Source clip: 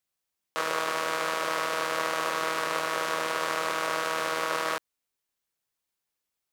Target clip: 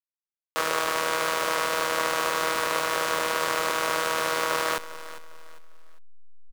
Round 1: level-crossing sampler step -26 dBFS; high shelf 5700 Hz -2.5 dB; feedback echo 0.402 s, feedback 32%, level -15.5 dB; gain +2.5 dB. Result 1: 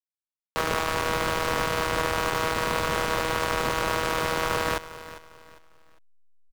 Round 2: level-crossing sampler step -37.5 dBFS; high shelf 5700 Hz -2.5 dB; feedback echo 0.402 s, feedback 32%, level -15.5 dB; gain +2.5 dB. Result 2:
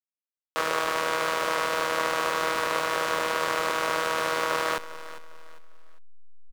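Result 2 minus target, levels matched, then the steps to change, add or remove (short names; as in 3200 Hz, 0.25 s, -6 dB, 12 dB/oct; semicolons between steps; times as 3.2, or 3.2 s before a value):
8000 Hz band -3.5 dB
change: high shelf 5700 Hz +4.5 dB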